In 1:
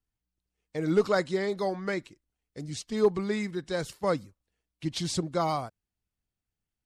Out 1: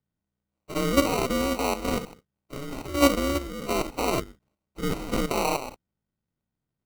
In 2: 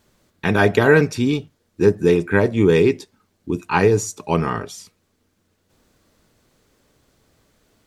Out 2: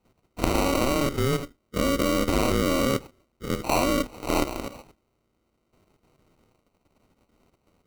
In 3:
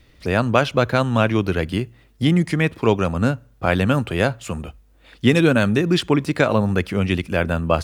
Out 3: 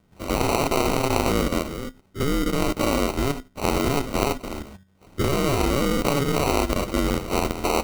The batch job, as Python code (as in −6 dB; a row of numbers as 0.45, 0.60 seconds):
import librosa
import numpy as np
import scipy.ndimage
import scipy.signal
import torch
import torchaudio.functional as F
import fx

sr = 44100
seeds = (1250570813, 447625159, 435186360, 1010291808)

y = fx.spec_dilate(x, sr, span_ms=120)
y = y * np.sin(2.0 * np.pi * 140.0 * np.arange(len(y)) / sr)
y = fx.high_shelf(y, sr, hz=7000.0, db=-9.0)
y = fx.level_steps(y, sr, step_db=10)
y = fx.env_lowpass_down(y, sr, base_hz=2900.0, full_db=-16.0)
y = fx.sample_hold(y, sr, seeds[0], rate_hz=1700.0, jitter_pct=0)
y = y * 10.0 ** (-6 / 20.0) / np.max(np.abs(y))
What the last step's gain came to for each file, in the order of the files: +5.0, −2.5, −1.5 decibels